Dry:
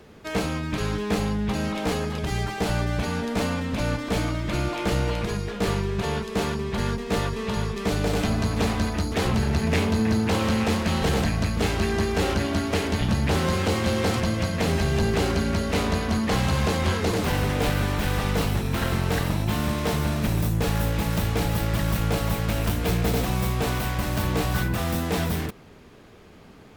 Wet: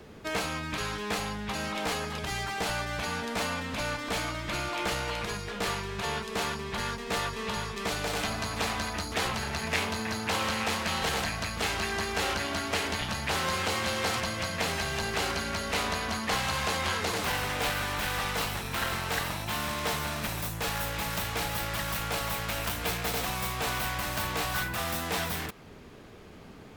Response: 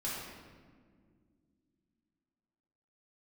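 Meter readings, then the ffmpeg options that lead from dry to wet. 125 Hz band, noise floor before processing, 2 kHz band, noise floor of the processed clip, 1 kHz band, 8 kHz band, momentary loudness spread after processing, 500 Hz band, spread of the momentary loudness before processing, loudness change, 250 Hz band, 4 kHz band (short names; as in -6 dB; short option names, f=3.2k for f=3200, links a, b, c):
-13.0 dB, -48 dBFS, 0.0 dB, -48 dBFS, -1.5 dB, 0.0 dB, 4 LU, -8.0 dB, 4 LU, -5.5 dB, -12.0 dB, 0.0 dB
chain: -filter_complex "[0:a]acrossover=split=680|3000[a][b][c];[a]acompressor=threshold=-36dB:ratio=6[d];[d][b][c]amix=inputs=3:normalize=0"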